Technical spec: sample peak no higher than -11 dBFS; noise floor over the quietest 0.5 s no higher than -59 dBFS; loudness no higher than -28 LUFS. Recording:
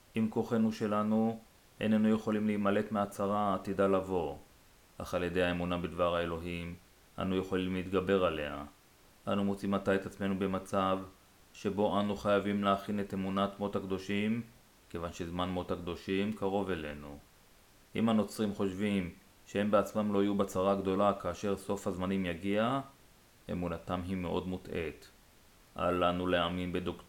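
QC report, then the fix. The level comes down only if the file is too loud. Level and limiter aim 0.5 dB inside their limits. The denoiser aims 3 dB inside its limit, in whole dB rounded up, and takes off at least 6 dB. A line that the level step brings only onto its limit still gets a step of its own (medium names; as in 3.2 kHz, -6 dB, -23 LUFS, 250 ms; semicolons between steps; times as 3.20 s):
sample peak -15.5 dBFS: pass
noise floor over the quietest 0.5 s -62 dBFS: pass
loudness -33.5 LUFS: pass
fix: none needed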